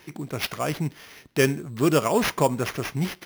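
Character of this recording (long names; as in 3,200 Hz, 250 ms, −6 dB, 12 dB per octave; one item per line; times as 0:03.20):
aliases and images of a low sample rate 8,000 Hz, jitter 0%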